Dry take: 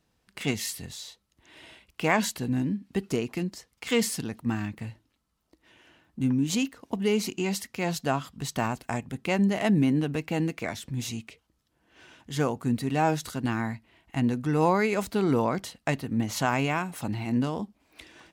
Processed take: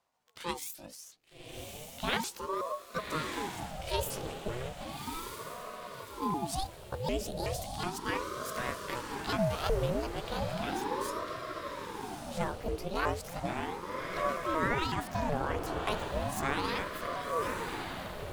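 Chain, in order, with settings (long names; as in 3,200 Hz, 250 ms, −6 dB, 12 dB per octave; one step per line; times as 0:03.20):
pitch shifter swept by a sawtooth +9.5 semitones, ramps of 373 ms
feedback delay with all-pass diffusion 1,174 ms, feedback 48%, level −4.5 dB
ring modulator whose carrier an LFO sweeps 520 Hz, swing 65%, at 0.35 Hz
level −4 dB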